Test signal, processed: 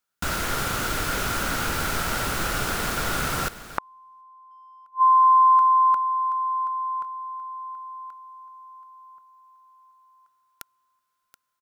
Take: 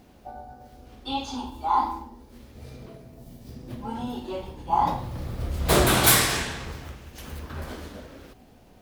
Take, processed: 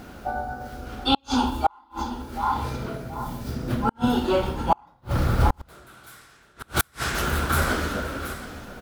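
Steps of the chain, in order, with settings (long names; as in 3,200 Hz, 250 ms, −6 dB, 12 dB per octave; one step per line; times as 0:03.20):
parametric band 1,400 Hz +13.5 dB 0.31 octaves
repeating echo 728 ms, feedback 31%, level −15 dB
in parallel at −6 dB: gain into a clipping stage and back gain 17 dB
on the sum: gate with flip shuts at −15 dBFS, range −41 dB
level +7.5 dB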